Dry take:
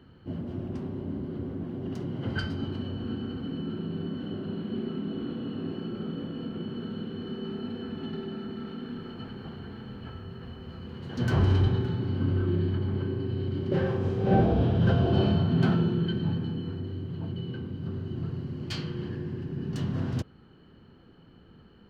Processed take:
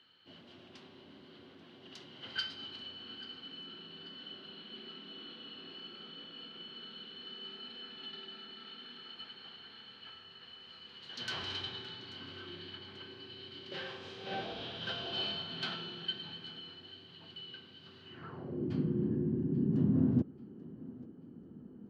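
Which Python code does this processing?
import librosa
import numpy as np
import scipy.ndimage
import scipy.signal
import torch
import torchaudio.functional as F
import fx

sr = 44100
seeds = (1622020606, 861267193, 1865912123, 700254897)

y = fx.echo_thinned(x, sr, ms=837, feedback_pct=42, hz=220.0, wet_db=-19.0)
y = fx.filter_sweep_bandpass(y, sr, from_hz=3700.0, to_hz=250.0, start_s=18.01, end_s=18.7, q=2.0)
y = y * 10.0 ** (7.0 / 20.0)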